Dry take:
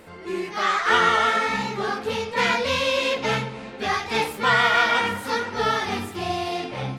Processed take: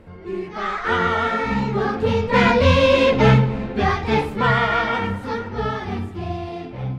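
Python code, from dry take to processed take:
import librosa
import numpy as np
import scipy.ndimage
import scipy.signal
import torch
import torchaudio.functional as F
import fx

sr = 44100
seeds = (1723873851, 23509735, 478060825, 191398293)

y = fx.doppler_pass(x, sr, speed_mps=6, closest_m=5.0, pass_at_s=2.99)
y = fx.riaa(y, sr, side='playback')
y = y * 10.0 ** (7.0 / 20.0)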